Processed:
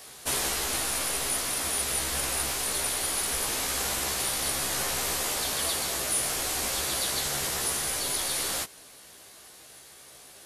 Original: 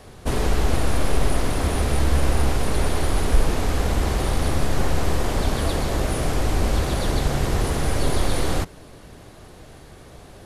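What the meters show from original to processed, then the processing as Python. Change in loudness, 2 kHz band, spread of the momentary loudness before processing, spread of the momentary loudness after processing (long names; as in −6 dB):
−3.0 dB, −2.0 dB, 2 LU, 1 LU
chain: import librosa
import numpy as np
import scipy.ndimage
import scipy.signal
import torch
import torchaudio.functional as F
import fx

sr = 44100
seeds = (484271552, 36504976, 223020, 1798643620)

y = fx.tilt_eq(x, sr, slope=4.5)
y = fx.rider(y, sr, range_db=3, speed_s=0.5)
y = fx.doubler(y, sr, ms=15.0, db=-4.0)
y = y * 10.0 ** (-7.5 / 20.0)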